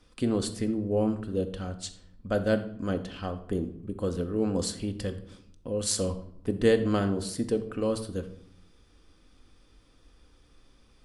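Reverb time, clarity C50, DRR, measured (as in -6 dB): 0.75 s, 12.0 dB, 6.5 dB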